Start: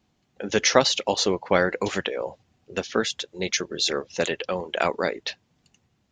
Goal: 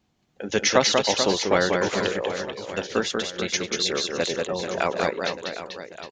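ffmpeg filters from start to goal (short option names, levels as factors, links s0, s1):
-filter_complex "[0:a]asplit=3[s0][s1][s2];[s0]afade=t=out:st=4.27:d=0.02[s3];[s1]lowpass=1100,afade=t=in:st=4.27:d=0.02,afade=t=out:st=4.78:d=0.02[s4];[s2]afade=t=in:st=4.78:d=0.02[s5];[s3][s4][s5]amix=inputs=3:normalize=0,asplit=2[s6][s7];[s7]aecho=0:1:190|437|758.1|1176|1718:0.631|0.398|0.251|0.158|0.1[s8];[s6][s8]amix=inputs=2:normalize=0,volume=0.891"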